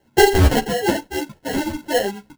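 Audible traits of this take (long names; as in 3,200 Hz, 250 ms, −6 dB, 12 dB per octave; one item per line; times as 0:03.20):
phaser sweep stages 8, 1.6 Hz, lowest notch 560–3,200 Hz
aliases and images of a low sample rate 1,200 Hz, jitter 0%
a shimmering, thickened sound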